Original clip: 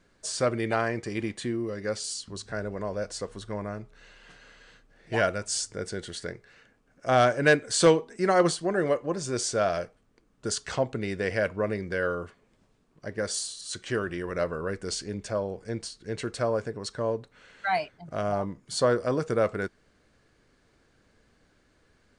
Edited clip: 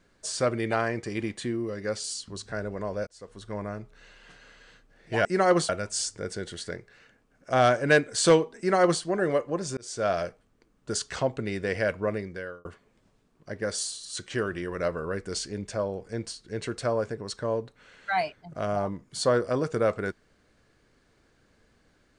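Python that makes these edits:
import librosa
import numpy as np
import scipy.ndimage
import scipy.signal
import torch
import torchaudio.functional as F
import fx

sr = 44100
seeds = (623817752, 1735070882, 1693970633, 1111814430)

y = fx.edit(x, sr, fx.fade_in_span(start_s=3.07, length_s=0.52),
    fx.duplicate(start_s=8.14, length_s=0.44, to_s=5.25),
    fx.fade_in_span(start_s=9.33, length_s=0.33),
    fx.fade_out_span(start_s=11.64, length_s=0.57), tone=tone)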